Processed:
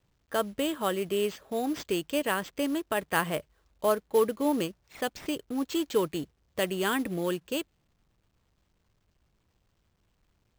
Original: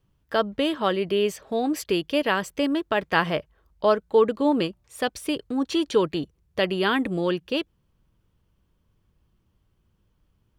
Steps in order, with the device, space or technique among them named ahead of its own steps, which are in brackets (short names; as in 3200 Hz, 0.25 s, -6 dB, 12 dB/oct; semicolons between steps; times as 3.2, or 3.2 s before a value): early companding sampler (sample-rate reducer 11000 Hz, jitter 0%; companded quantiser 6-bit); gain -5.5 dB